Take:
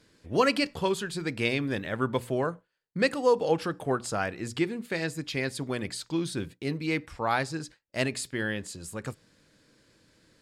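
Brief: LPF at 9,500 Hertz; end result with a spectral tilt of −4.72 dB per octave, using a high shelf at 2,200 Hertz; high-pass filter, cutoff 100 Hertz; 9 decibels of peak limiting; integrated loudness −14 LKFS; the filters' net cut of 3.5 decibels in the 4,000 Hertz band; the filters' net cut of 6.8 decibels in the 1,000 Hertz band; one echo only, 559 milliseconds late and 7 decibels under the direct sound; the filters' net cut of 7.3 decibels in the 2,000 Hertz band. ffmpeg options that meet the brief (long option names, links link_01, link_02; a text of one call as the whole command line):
ffmpeg -i in.wav -af "highpass=100,lowpass=9500,equalizer=frequency=1000:width_type=o:gain=-7.5,equalizer=frequency=2000:width_type=o:gain=-8.5,highshelf=frequency=2200:gain=6,equalizer=frequency=4000:width_type=o:gain=-7,alimiter=limit=-23dB:level=0:latency=1,aecho=1:1:559:0.447,volume=20dB" out.wav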